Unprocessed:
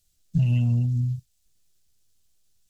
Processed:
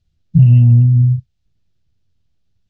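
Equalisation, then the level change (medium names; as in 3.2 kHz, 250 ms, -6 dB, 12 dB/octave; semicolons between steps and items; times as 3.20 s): distance through air 220 m; peaking EQ 110 Hz +12 dB 2.4 oct; +2.0 dB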